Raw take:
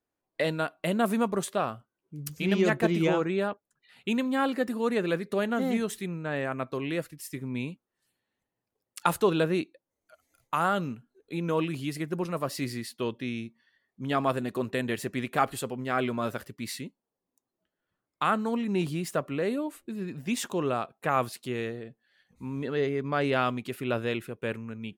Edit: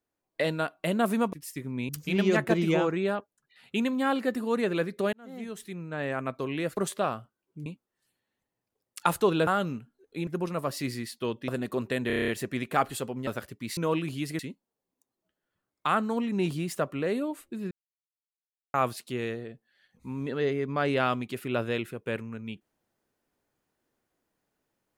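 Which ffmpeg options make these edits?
-filter_complex "[0:a]asplit=21[s0][s1][s2][s3][s4][s5][s6][s7][s8][s9][s10][s11][s12][s13][s14][s15][s16][s17][s18][s19][s20];[s0]atrim=end=1.332[s21];[s1]atrim=start=7.098:end=7.662[s22];[s2]atrim=start=2.218:end=5.46,asetpts=PTS-STARTPTS,afade=t=out:st=3.238:d=0.004:c=hsin[s23];[s3]atrim=start=5.46:end=7.102,asetpts=PTS-STARTPTS,afade=t=in:d=1.03[s24];[s4]atrim=start=1.328:end=2.222[s25];[s5]atrim=start=7.658:end=9.472[s26];[s6]atrim=start=10.628:end=11.432[s27];[s7]atrim=start=12.048:end=13.262[s28];[s8]atrim=start=14.308:end=14.932[s29];[s9]atrim=start=14.898:end=14.932[s30];[s10]atrim=start=14.898:end=14.932[s31];[s11]atrim=start=14.898:end=14.932[s32];[s12]atrim=start=14.898:end=14.932[s33];[s13]atrim=start=14.898:end=14.932[s34];[s14]atrim=start=14.898:end=14.932[s35];[s15]atrim=start=14.898:end=15.892[s36];[s16]atrim=start=16.248:end=16.752[s37];[s17]atrim=start=11.428:end=12.052[s38];[s18]atrim=start=16.748:end=20.07,asetpts=PTS-STARTPTS,afade=t=out:st=3.318:d=0.004:c=hsin[s39];[s19]atrim=start=20.07:end=21.1,asetpts=PTS-STARTPTS,volume=0[s40];[s20]atrim=start=21.1,asetpts=PTS-STARTPTS,afade=t=in:d=0.004:c=hsin[s41];[s21][s22]acrossfade=d=0.004:c1=hsin:c2=hsin[s42];[s23][s24]concat=n=2:v=0:a=1[s43];[s42][s43]acrossfade=d=0.004:c1=hsin:c2=hsin[s44];[s44][s25]acrossfade=d=0.004:c1=hsin:c2=hsin[s45];[s45][s26]acrossfade=d=0.004:c1=hsin:c2=hsin[s46];[s46][s27]acrossfade=d=0.004:c1=hsin:c2=hsin[s47];[s47][s28]acrossfade=d=0.004:c1=hsin:c2=hsin[s48];[s48][s29]acrossfade=d=0.004:c1=hsin:c2=hsin[s49];[s49][s30]acrossfade=d=0.004:c1=hsin:c2=hsin[s50];[s50][s31]acrossfade=d=0.004:c1=hsin:c2=hsin[s51];[s51][s32]acrossfade=d=0.004:c1=hsin:c2=hsin[s52];[s52][s33]acrossfade=d=0.004:c1=hsin:c2=hsin[s53];[s53][s34]acrossfade=d=0.004:c1=hsin:c2=hsin[s54];[s54][s35]acrossfade=d=0.004:c1=hsin:c2=hsin[s55];[s55][s36]acrossfade=d=0.004:c1=hsin:c2=hsin[s56];[s56][s37]acrossfade=d=0.004:c1=hsin:c2=hsin[s57];[s57][s38]acrossfade=d=0.004:c1=hsin:c2=hsin[s58];[s39][s40][s41]concat=n=3:v=0:a=1[s59];[s58][s59]acrossfade=d=0.004:c1=hsin:c2=hsin"

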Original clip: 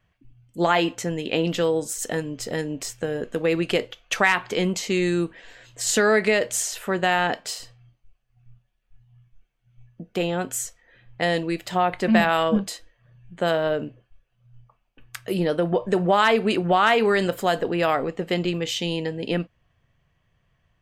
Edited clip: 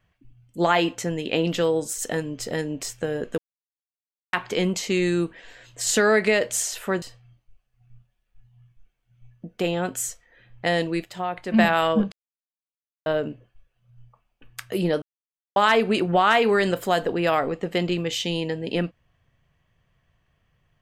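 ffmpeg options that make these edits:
-filter_complex "[0:a]asplit=10[s0][s1][s2][s3][s4][s5][s6][s7][s8][s9];[s0]atrim=end=3.38,asetpts=PTS-STARTPTS,afade=t=out:st=3.376:d=0.004:c=hsin[s10];[s1]atrim=start=3.38:end=4.33,asetpts=PTS-STARTPTS,volume=0[s11];[s2]atrim=start=4.33:end=7.022,asetpts=PTS-STARTPTS,afade=t=in:d=0.004:c=hsin[s12];[s3]atrim=start=7.578:end=11.602[s13];[s4]atrim=start=11.598:end=12.102,asetpts=PTS-STARTPTS,volume=0.447[s14];[s5]atrim=start=12.098:end=12.68,asetpts=PTS-STARTPTS,afade=t=out:st=0.578:d=0.004:c=hsin[s15];[s6]atrim=start=12.68:end=13.62,asetpts=PTS-STARTPTS,volume=0[s16];[s7]atrim=start=13.62:end=15.58,asetpts=PTS-STARTPTS,afade=t=in:d=0.004:c=hsin,afade=t=out:st=1.956:d=0.004:c=hsin[s17];[s8]atrim=start=15.58:end=16.12,asetpts=PTS-STARTPTS,volume=0[s18];[s9]atrim=start=16.12,asetpts=PTS-STARTPTS,afade=t=in:d=0.004:c=hsin[s19];[s10][s11][s12]concat=n=3:v=0:a=1[s20];[s20][s13]acrossfade=d=0.004:c1=hsin:c2=hsin[s21];[s21][s14]acrossfade=d=0.004:c1=hsin:c2=hsin[s22];[s15][s16][s17][s18][s19]concat=n=5:v=0:a=1[s23];[s22][s23]acrossfade=d=0.004:c1=hsin:c2=hsin"

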